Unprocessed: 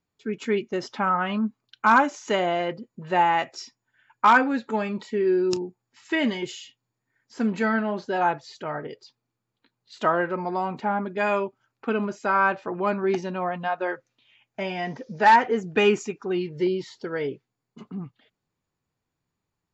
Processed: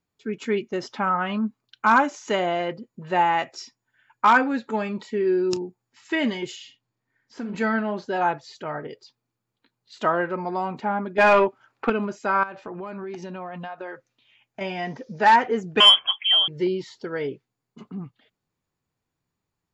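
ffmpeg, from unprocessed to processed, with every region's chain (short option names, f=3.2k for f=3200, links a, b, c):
-filter_complex "[0:a]asettb=1/sr,asplit=3[a][b][c];[a]atrim=end=6.564[d];[b]atrim=start=6.56:end=7.55,asetpts=PTS-STARTPTS,afade=t=in:d=0.004:c=qsin,afade=t=out:st=0.986:d=0.004:c=qsin,asplit=2[e][f];[f]adelay=48,volume=-7.5dB[g];[e][g]amix=inputs=2:normalize=0,atrim=end_sample=43659,acompressor=threshold=-27dB:ratio=12:attack=3.2:release=140:knee=1:detection=peak,lowpass=5.8k[h];[c]atrim=start=7.546[i];[d][h]acrossfade=d=0.004:c1=hsin:c2=qsin[j];[j][i]acrossfade=d=0.004:c1=qsin:c2=hsin,asettb=1/sr,asplit=3[k][l][m];[k]atrim=end=11.184[n];[l]atrim=start=11.18:end=11.9,asetpts=PTS-STARTPTS,afade=t=in:d=0.004:c=qsin,afade=t=out:st=0.716:d=0.004:c=qsin,acontrast=54,asplit=2[o][p];[p]highpass=f=720:p=1,volume=14dB,asoftclip=type=tanh:threshold=-7dB[q];[o][q]amix=inputs=2:normalize=0,lowpass=f=1.8k:p=1,volume=-6dB[r];[m]atrim=start=11.896[s];[n][r]acrossfade=d=0.004:c1=hsin:c2=qsin[t];[t][s]acrossfade=d=0.004:c1=qsin:c2=hsin,asettb=1/sr,asplit=3[u][v][w];[u]atrim=end=12.434[x];[v]atrim=start=12.43:end=14.61,asetpts=PTS-STARTPTS,afade=t=in:d=0.004:c=qsin,afade=t=out:st=2.176:d=0.004:c=qsin,acompressor=threshold=-30dB:ratio=16:attack=3.2:release=140:knee=1:detection=peak,volume=22.5dB,asoftclip=hard,volume=-22.5dB[y];[w]atrim=start=14.606[z];[x][y]acrossfade=d=0.004:c1=hsin:c2=qsin[aa];[aa][z]acrossfade=d=0.004:c1=qsin:c2=hsin,asettb=1/sr,asplit=3[ab][ac][ad];[ab]atrim=end=15.804[ae];[ac]atrim=start=15.8:end=16.48,asetpts=PTS-STARTPTS,afade=t=in:d=0.004:c=qsin,afade=t=out:st=0.676:d=0.004:c=qsin,lowpass=f=3k:t=q:w=0.5098,lowpass=f=3k:t=q:w=0.6013,lowpass=f=3k:t=q:w=0.9,lowpass=f=3k:t=q:w=2.563,afreqshift=-3500,acontrast=82,highpass=51[af];[ad]atrim=start=16.476[ag];[ae][af]acrossfade=d=0.004:c1=hsin:c2=qsin[ah];[ah][ag]acrossfade=d=0.004:c1=qsin:c2=hsin"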